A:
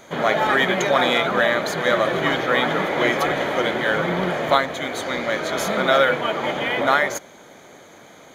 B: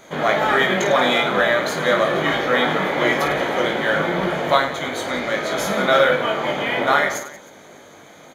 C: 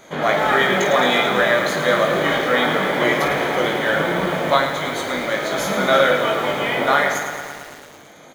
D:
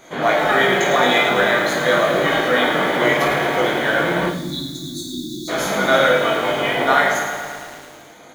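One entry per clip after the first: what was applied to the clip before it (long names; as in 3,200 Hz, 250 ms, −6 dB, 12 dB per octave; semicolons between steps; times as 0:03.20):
reverse bouncing-ball delay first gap 20 ms, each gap 1.6×, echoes 5; level −1 dB
feedback echo at a low word length 110 ms, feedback 80%, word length 6 bits, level −9.5 dB
time-frequency box erased 0:04.29–0:05.48, 380–3,400 Hz; coupled-rooms reverb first 0.53 s, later 1.9 s, from −17 dB, DRR 2 dB; level −1 dB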